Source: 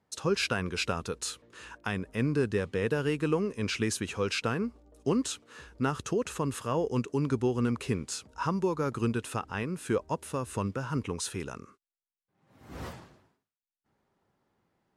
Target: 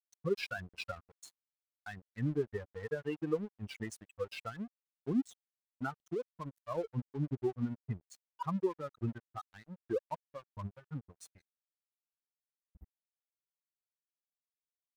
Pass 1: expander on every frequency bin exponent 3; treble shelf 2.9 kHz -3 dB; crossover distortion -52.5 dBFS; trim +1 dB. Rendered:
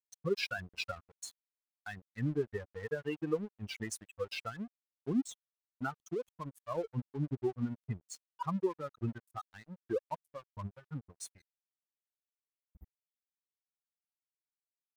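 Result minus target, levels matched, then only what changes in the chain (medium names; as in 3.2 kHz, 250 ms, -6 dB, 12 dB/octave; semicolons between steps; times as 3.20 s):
8 kHz band +8.0 dB
change: treble shelf 2.9 kHz -10.5 dB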